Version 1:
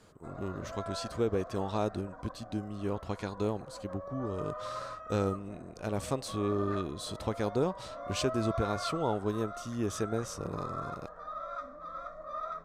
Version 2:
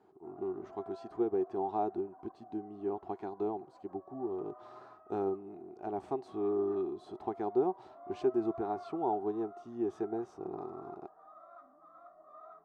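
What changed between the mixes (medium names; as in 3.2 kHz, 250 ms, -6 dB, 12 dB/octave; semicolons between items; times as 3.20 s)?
speech +7.0 dB; master: add two resonant band-passes 530 Hz, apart 1 oct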